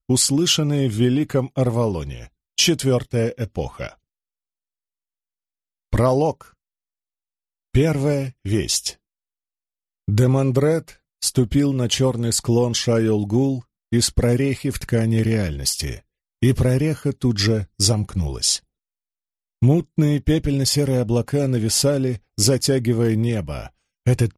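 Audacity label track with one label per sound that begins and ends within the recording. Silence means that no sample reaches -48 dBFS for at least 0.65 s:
5.930000	6.510000	sound
7.750000	8.950000	sound
10.080000	18.600000	sound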